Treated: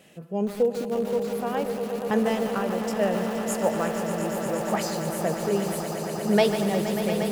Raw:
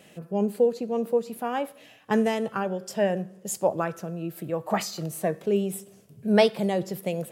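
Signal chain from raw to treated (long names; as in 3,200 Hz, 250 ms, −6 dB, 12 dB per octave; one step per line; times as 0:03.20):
echo that builds up and dies away 118 ms, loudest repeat 8, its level −11.5 dB
feedback echo at a low word length 148 ms, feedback 35%, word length 5 bits, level −9.5 dB
level −1.5 dB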